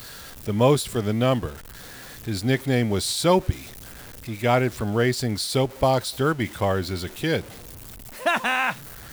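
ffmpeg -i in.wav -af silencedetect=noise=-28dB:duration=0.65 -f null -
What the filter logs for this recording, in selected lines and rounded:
silence_start: 1.50
silence_end: 2.27 | silence_duration: 0.78
silence_start: 3.52
silence_end: 4.28 | silence_duration: 0.76
silence_start: 7.41
silence_end: 8.26 | silence_duration: 0.85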